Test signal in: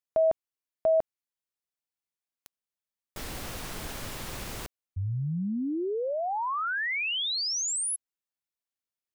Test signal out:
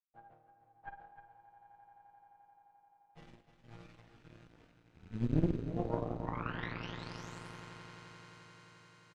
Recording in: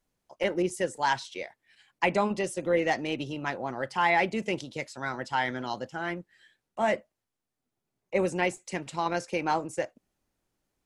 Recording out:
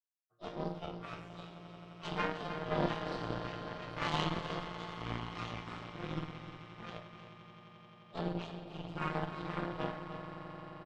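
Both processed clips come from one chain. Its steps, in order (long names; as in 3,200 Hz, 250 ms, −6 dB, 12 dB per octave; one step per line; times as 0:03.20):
partials spread apart or drawn together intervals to 123%
low-pass filter 3,200 Hz 12 dB per octave
downward expander −55 dBFS
parametric band 130 Hz +9 dB 0.73 octaves
rotating-speaker cabinet horn 1.2 Hz
soft clipping −19.5 dBFS
resonators tuned to a chord A#2 sus4, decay 0.77 s
echo that builds up and dies away 87 ms, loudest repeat 8, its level −13.5 dB
harmonic generator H 3 −18 dB, 4 −8 dB, 6 −27 dB, 7 −28 dB, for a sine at −34 dBFS
single-tap delay 306 ms −11 dB
level +15.5 dB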